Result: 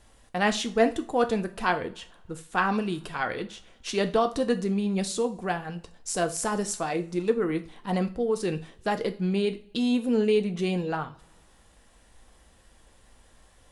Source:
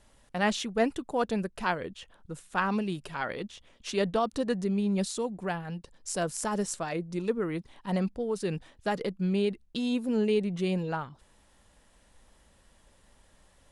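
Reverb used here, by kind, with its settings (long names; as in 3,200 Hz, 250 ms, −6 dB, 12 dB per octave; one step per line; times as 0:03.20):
coupled-rooms reverb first 0.33 s, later 1.8 s, from −26 dB, DRR 7 dB
level +3 dB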